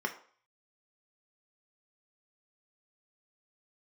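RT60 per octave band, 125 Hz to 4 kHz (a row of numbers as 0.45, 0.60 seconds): 0.35, 0.40, 0.45, 0.50, 0.45, 0.45 seconds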